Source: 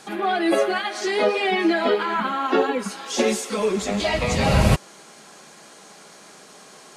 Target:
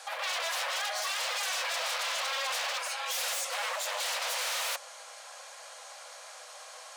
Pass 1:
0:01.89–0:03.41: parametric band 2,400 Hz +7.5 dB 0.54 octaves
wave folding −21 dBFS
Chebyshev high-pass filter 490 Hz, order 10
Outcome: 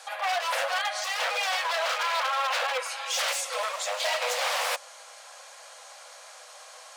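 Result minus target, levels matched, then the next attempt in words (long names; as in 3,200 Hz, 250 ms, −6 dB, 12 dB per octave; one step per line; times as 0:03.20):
wave folding: distortion −15 dB
0:01.89–0:03.41: parametric band 2,400 Hz +7.5 dB 0.54 octaves
wave folding −27 dBFS
Chebyshev high-pass filter 490 Hz, order 10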